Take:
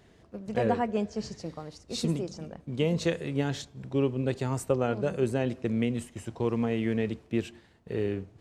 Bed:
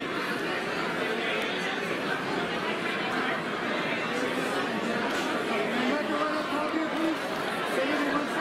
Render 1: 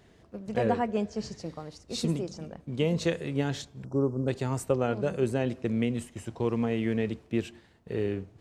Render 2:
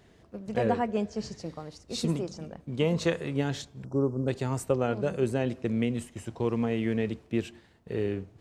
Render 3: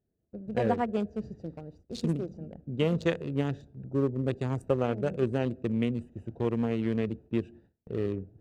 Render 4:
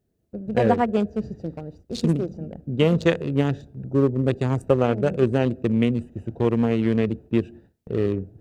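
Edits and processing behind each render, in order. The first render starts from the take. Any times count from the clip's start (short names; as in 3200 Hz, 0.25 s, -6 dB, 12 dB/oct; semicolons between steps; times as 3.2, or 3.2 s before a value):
3.85–4.28 elliptic band-stop 1400–5200 Hz
2.06–3.37 dynamic EQ 1100 Hz, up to +6 dB, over -45 dBFS, Q 1.2
Wiener smoothing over 41 samples; gate with hold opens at -46 dBFS
gain +8 dB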